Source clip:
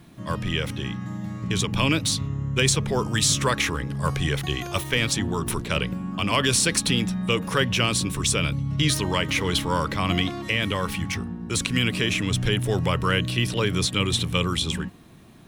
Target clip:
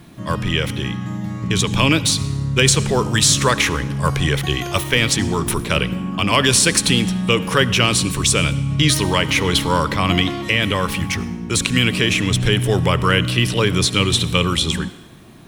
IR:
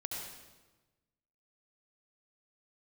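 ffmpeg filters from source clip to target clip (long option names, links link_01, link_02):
-filter_complex "[0:a]asplit=2[link_01][link_02];[link_02]equalizer=frequency=330:width=1.5:gain=7.5[link_03];[1:a]atrim=start_sample=2205,lowshelf=frequency=470:gain=-11[link_04];[link_03][link_04]afir=irnorm=-1:irlink=0,volume=-13dB[link_05];[link_01][link_05]amix=inputs=2:normalize=0,volume=5.5dB"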